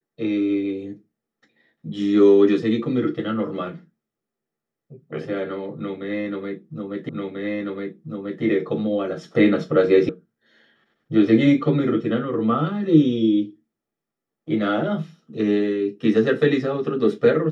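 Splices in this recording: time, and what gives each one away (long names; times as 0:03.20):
0:07.09: the same again, the last 1.34 s
0:10.09: cut off before it has died away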